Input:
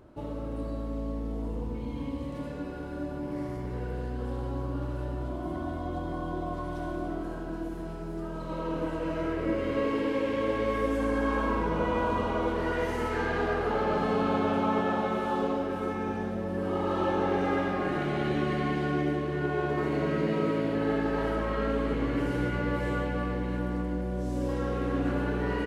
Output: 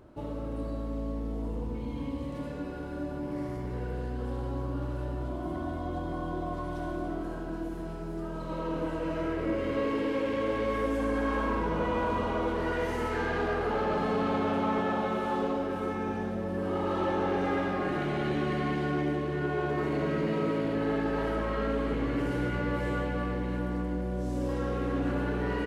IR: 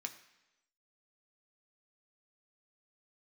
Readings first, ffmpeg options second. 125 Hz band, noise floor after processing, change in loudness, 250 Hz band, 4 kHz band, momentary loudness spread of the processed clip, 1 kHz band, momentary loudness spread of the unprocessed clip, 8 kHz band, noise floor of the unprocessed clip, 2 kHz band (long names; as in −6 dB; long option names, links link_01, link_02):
−1.0 dB, −37 dBFS, −1.0 dB, −1.0 dB, −1.0 dB, 7 LU, −1.0 dB, 8 LU, can't be measured, −36 dBFS, −1.0 dB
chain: -af "asoftclip=type=tanh:threshold=-20.5dB"